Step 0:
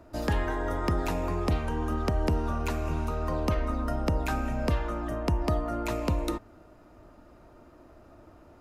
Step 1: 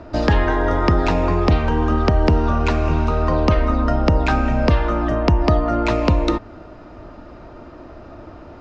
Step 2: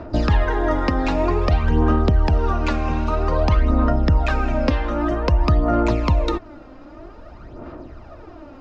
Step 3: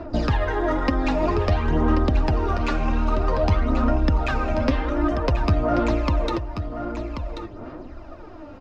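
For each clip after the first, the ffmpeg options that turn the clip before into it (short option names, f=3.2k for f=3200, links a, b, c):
-filter_complex "[0:a]lowpass=f=5.3k:w=0.5412,lowpass=f=5.3k:w=1.3066,asplit=2[a][b];[b]acompressor=threshold=-33dB:ratio=6,volume=-1dB[c];[a][c]amix=inputs=2:normalize=0,volume=9dB"
-af "aphaser=in_gain=1:out_gain=1:delay=3.8:decay=0.58:speed=0.52:type=sinusoidal,alimiter=limit=-4dB:level=0:latency=1:release=387,volume=-3.5dB"
-filter_complex "[0:a]flanger=delay=2.9:depth=7.2:regen=36:speed=1:shape=sinusoidal,asplit=2[a][b];[b]asoftclip=type=tanh:threshold=-26dB,volume=-8dB[c];[a][c]amix=inputs=2:normalize=0,aecho=1:1:1085:0.355"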